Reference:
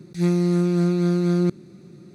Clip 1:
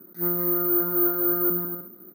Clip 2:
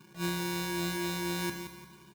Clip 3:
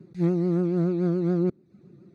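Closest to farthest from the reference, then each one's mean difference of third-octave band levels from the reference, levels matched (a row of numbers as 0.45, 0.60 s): 3, 1, 2; 5.0, 10.0, 14.0 dB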